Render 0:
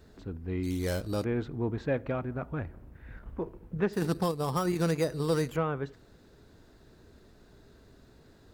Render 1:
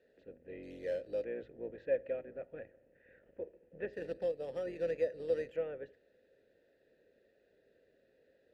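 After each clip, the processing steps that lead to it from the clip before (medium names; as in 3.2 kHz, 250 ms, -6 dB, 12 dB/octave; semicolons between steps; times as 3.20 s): octave divider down 2 oct, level +3 dB; vowel filter e; hum notches 60/120 Hz; trim +1 dB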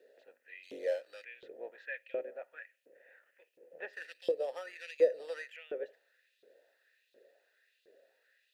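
treble shelf 3.4 kHz +8 dB; LFO high-pass saw up 1.4 Hz 350–3600 Hz; trim +1 dB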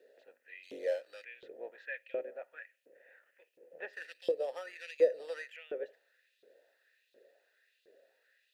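no audible change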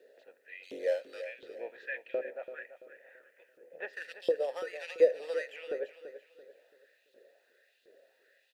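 feedback delay 336 ms, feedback 36%, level -12 dB; trim +3 dB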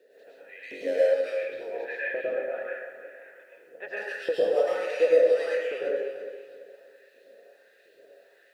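plate-style reverb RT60 1.1 s, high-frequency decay 0.55×, pre-delay 90 ms, DRR -8 dB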